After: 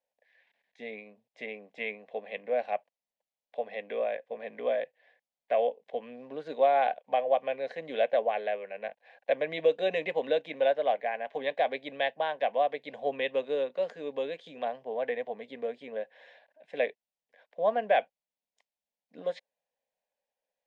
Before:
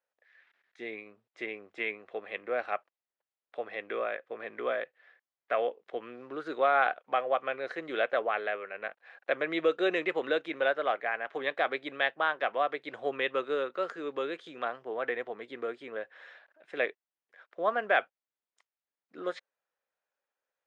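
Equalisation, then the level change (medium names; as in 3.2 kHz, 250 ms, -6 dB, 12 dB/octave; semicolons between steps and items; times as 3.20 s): low-pass 2.9 kHz 6 dB/octave; static phaser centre 350 Hz, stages 6; +4.5 dB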